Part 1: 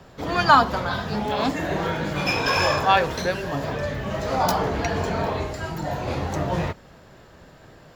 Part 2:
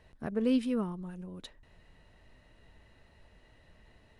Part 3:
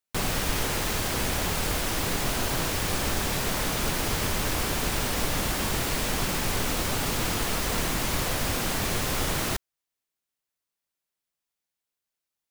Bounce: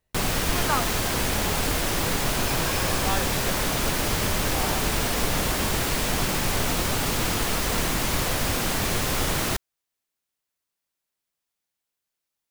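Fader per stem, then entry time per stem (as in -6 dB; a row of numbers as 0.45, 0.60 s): -12.0, -17.5, +2.5 dB; 0.20, 0.00, 0.00 s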